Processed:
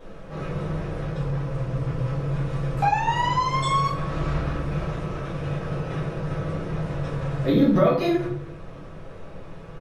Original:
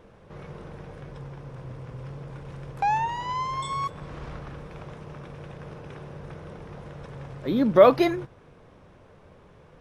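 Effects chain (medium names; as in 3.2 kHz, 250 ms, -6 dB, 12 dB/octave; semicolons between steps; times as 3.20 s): comb 6.1 ms, depth 31%; compression 16:1, threshold -26 dBFS, peak gain reduction 17 dB; reverberation RT60 0.60 s, pre-delay 4 ms, DRR -9.5 dB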